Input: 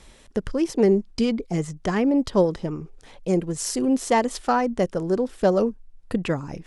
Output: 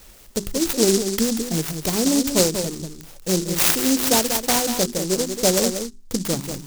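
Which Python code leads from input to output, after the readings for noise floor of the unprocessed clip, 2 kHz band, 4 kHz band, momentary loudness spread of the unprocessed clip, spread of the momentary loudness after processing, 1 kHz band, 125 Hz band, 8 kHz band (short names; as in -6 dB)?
-51 dBFS, +4.0 dB, +13.5 dB, 10 LU, 11 LU, -2.5 dB, +0.5 dB, +14.5 dB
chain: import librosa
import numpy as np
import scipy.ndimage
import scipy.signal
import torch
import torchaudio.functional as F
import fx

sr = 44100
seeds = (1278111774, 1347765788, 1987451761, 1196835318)

y = fx.lowpass_res(x, sr, hz=6600.0, q=8.4)
y = fx.hum_notches(y, sr, base_hz=50, count=8)
y = y + 10.0 ** (-8.0 / 20.0) * np.pad(y, (int(188 * sr / 1000.0), 0))[:len(y)]
y = fx.noise_mod_delay(y, sr, seeds[0], noise_hz=6000.0, depth_ms=0.21)
y = F.gain(torch.from_numpy(y), 1.0).numpy()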